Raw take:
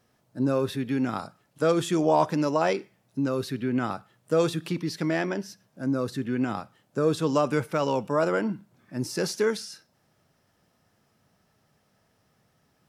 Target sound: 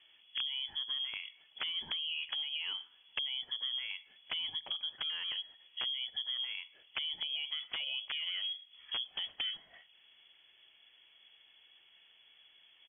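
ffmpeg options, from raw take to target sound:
-af "equalizer=f=2100:w=1.6:g=-5,alimiter=limit=0.119:level=0:latency=1:release=84,acompressor=threshold=0.01:ratio=16,aresample=16000,aeval=exprs='(mod(44.7*val(0)+1,2)-1)/44.7':c=same,aresample=44100,lowpass=f=3000:t=q:w=0.5098,lowpass=f=3000:t=q:w=0.6013,lowpass=f=3000:t=q:w=0.9,lowpass=f=3000:t=q:w=2.563,afreqshift=-3500,volume=1.88"

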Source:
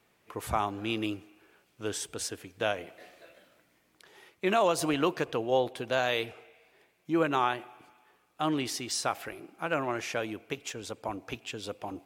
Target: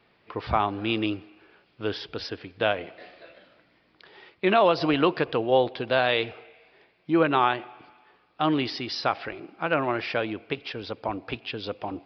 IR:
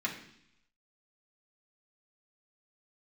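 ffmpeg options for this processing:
-af "aresample=11025,aresample=44100,volume=1.88"

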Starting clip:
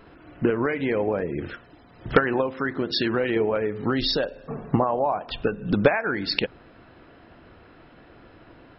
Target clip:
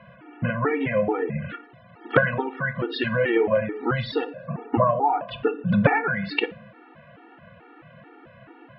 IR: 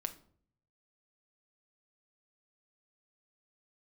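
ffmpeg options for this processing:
-filter_complex "[0:a]highpass=130,equalizer=f=130:t=q:w=4:g=6,equalizer=f=250:t=q:w=4:g=-4,equalizer=f=380:t=q:w=4:g=-6,lowpass=f=2900:w=0.5412,lowpass=f=2900:w=1.3066,asplit=2[s0][s1];[1:a]atrim=start_sample=2205[s2];[s1][s2]afir=irnorm=-1:irlink=0,volume=1.5[s3];[s0][s3]amix=inputs=2:normalize=0,afftfilt=real='re*gt(sin(2*PI*2.3*pts/sr)*(1-2*mod(floor(b*sr/1024/240),2)),0)':imag='im*gt(sin(2*PI*2.3*pts/sr)*(1-2*mod(floor(b*sr/1024/240),2)),0)':win_size=1024:overlap=0.75,volume=0.891"

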